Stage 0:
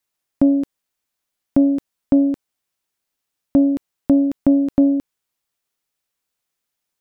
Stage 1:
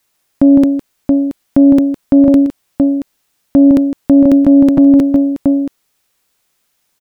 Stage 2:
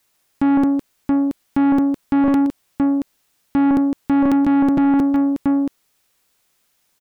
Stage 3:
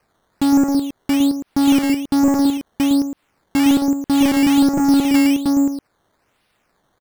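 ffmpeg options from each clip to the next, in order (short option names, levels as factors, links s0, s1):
-af "aecho=1:1:159|677:0.266|0.237,alimiter=level_in=6.31:limit=0.891:release=50:level=0:latency=1,volume=0.891"
-af "asoftclip=type=tanh:threshold=0.251,volume=0.891"
-filter_complex "[0:a]asplit=2[s0][s1];[s1]adelay=110.8,volume=0.501,highshelf=f=4000:g=-2.49[s2];[s0][s2]amix=inputs=2:normalize=0,acrossover=split=2600[s3][s4];[s4]acompressor=threshold=0.00112:ratio=4:attack=1:release=60[s5];[s3][s5]amix=inputs=2:normalize=0,acrusher=samples=12:mix=1:aa=0.000001:lfo=1:lforange=12:lforate=1.2"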